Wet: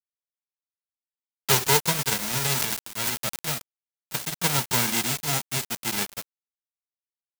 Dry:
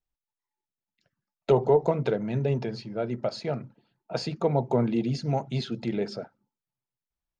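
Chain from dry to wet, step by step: spectral whitening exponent 0.1; bit-crush 5-bit; 2.53–3.47 transient shaper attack -3 dB, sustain +12 dB

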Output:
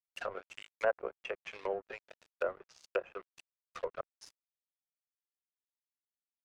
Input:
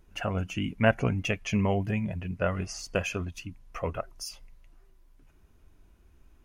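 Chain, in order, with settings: rippled Chebyshev high-pass 360 Hz, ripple 6 dB; crossover distortion -42 dBFS; treble ducked by the level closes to 950 Hz, closed at -33 dBFS

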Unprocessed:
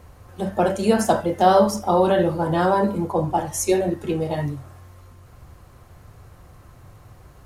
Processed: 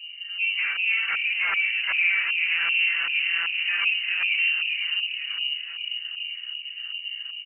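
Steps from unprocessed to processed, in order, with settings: 2.49–3.63 sample sorter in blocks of 256 samples; dynamic EQ 1200 Hz, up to +7 dB, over -34 dBFS, Q 0.84; harmonic-percussive split percussive -13 dB; bell 80 Hz +13 dB 2.5 oct; in parallel at -1.5 dB: limiter -16.5 dBFS, peak gain reduction 17 dB; on the sum: soft clip -18.5 dBFS, distortion -6 dB; flange 0.45 Hz, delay 6.6 ms, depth 9.3 ms, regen +48%; on a send: frequency-shifting echo 0.492 s, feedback 60%, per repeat -37 Hz, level -5.5 dB; on the sum: LFO low-pass saw up 2.6 Hz 380–1700 Hz; inverted band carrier 2900 Hz; gain -2.5 dB

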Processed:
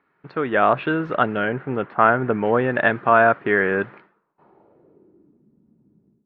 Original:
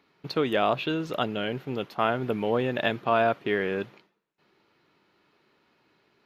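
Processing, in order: 1.45–2.45 Gaussian blur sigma 2.2 samples; AGC gain up to 14.5 dB; low-pass sweep 1600 Hz -> 210 Hz, 4.05–5.48; gain -4 dB

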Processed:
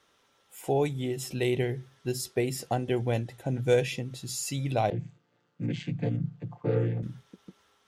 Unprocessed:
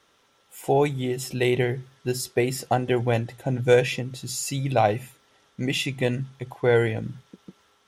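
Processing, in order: 4.9–7.03 chord vocoder major triad, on A#2; dynamic EQ 1300 Hz, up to -6 dB, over -36 dBFS, Q 0.72; gain -4 dB

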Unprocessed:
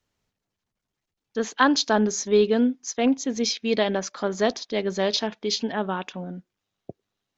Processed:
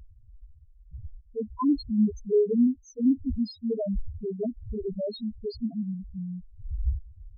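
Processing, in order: wind noise 95 Hz -37 dBFS; low shelf 350 Hz +10 dB; loudest bins only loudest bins 1; gain -2 dB

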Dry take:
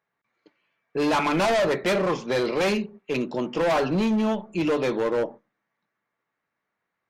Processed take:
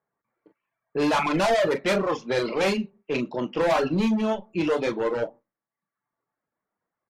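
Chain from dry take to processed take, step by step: early reflections 26 ms -12 dB, 41 ms -8 dB; reverb removal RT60 0.78 s; low-pass opened by the level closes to 1200 Hz, open at -19 dBFS

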